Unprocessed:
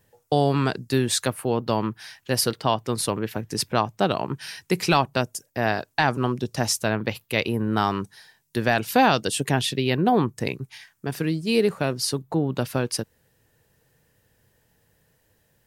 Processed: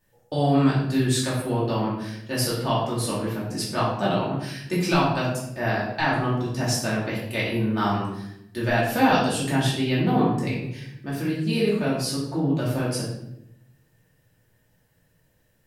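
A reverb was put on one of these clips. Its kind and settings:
rectangular room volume 230 cubic metres, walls mixed, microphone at 2.6 metres
level −9.5 dB

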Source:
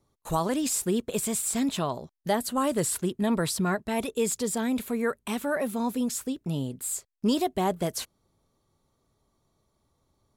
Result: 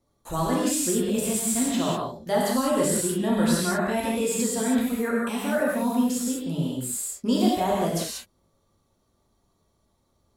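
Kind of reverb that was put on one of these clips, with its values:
reverb whose tail is shaped and stops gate 220 ms flat, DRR −5 dB
level −3 dB

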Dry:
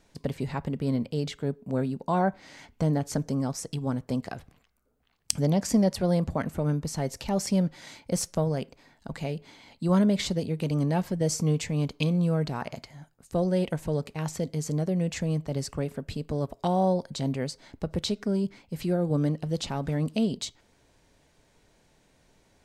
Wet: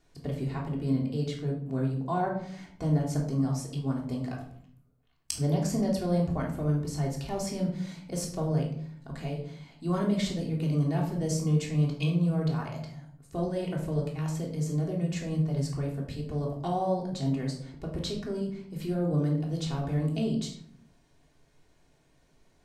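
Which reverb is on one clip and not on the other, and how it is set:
rectangular room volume 850 cubic metres, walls furnished, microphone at 3.3 metres
level −8 dB

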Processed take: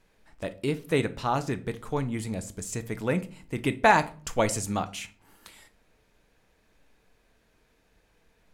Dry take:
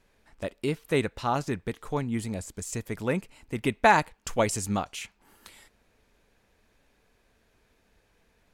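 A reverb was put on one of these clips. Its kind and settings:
rectangular room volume 360 cubic metres, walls furnished, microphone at 0.55 metres

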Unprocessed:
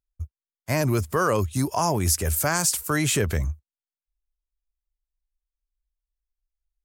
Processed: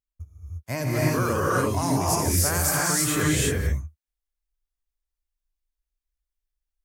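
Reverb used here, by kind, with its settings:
reverb whose tail is shaped and stops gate 370 ms rising, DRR −5.5 dB
level −6 dB

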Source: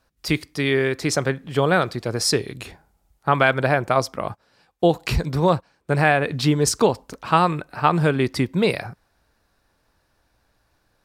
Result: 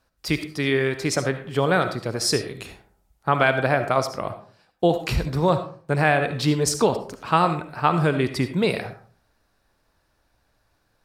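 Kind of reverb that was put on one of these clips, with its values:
comb and all-pass reverb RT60 0.46 s, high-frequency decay 0.5×, pre-delay 30 ms, DRR 9 dB
level −2 dB

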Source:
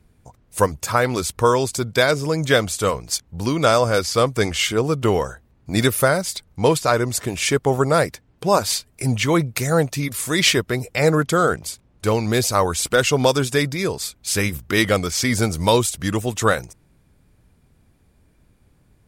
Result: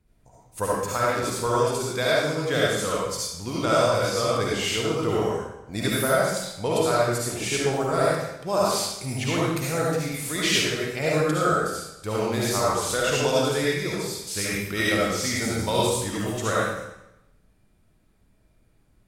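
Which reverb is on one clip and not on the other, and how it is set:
comb and all-pass reverb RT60 0.88 s, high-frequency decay 0.95×, pre-delay 30 ms, DRR −6.5 dB
level −11.5 dB

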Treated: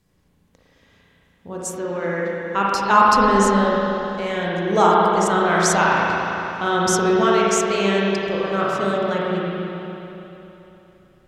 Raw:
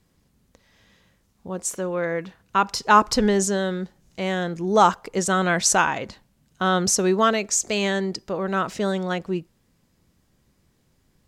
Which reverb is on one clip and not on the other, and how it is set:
spring reverb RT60 3.3 s, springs 35/56 ms, chirp 65 ms, DRR −5.5 dB
level −2.5 dB

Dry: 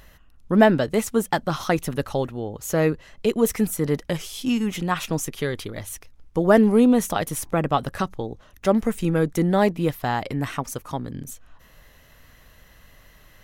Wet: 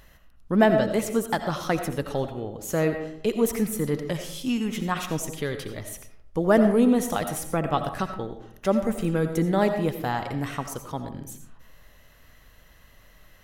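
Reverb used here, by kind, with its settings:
comb and all-pass reverb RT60 0.69 s, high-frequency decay 0.45×, pre-delay 45 ms, DRR 7.5 dB
level −3.5 dB

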